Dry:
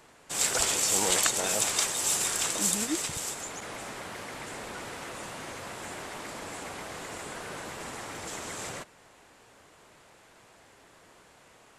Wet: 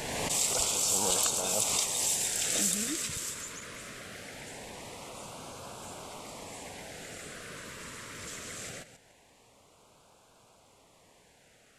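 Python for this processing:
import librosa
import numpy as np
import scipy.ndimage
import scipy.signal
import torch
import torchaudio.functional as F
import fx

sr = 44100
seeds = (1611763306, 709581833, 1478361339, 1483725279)

p1 = fx.reverse_delay(x, sr, ms=147, wet_db=-13.0)
p2 = fx.peak_eq(p1, sr, hz=340.0, db=-5.5, octaves=0.49)
p3 = np.clip(p2, -10.0 ** (-16.5 / 20.0), 10.0 ** (-16.5 / 20.0))
p4 = p2 + F.gain(torch.from_numpy(p3), -9.0).numpy()
p5 = fx.filter_lfo_notch(p4, sr, shape='sine', hz=0.22, low_hz=770.0, high_hz=1900.0, q=1.1)
p6 = fx.pre_swell(p5, sr, db_per_s=26.0)
y = F.gain(torch.from_numpy(p6), -5.0).numpy()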